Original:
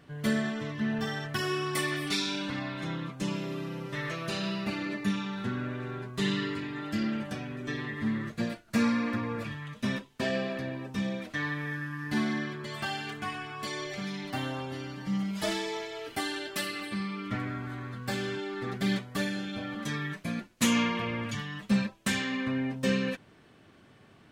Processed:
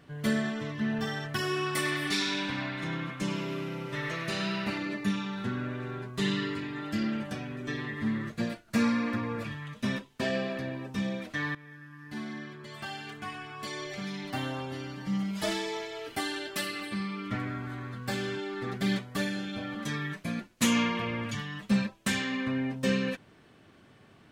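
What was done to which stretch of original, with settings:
0:01.46–0:04.78: feedback echo with a band-pass in the loop 100 ms, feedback 74%, band-pass 1,800 Hz, level −3.5 dB
0:11.55–0:14.37: fade in, from −16.5 dB

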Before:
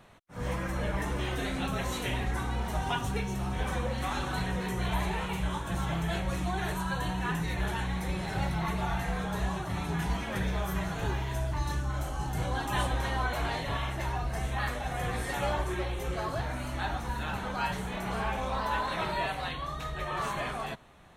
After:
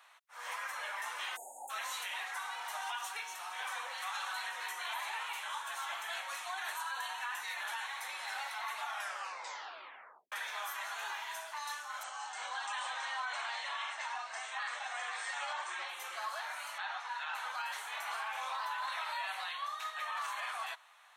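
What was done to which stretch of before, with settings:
0:01.36–0:01.70: time-frequency box erased 950–6,500 Hz
0:08.86: tape stop 1.46 s
0:12.03–0:15.89: linear-phase brick-wall low-pass 8,900 Hz
0:16.78–0:17.35: band-pass filter 440–4,800 Hz
whole clip: high-pass filter 910 Hz 24 dB per octave; brickwall limiter −30 dBFS

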